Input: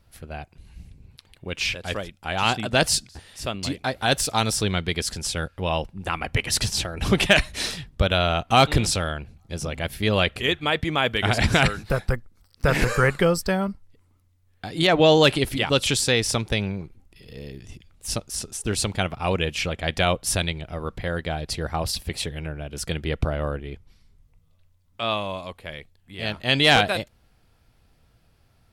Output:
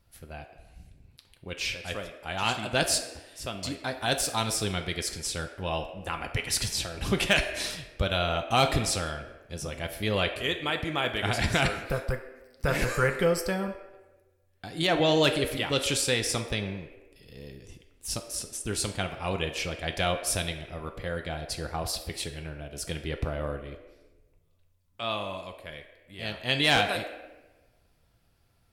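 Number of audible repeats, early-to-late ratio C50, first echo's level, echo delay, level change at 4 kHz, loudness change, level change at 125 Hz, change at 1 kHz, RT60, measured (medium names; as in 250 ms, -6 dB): no echo, 9.0 dB, no echo, no echo, -5.5 dB, -5.5 dB, -7.0 dB, -6.0 dB, 1.1 s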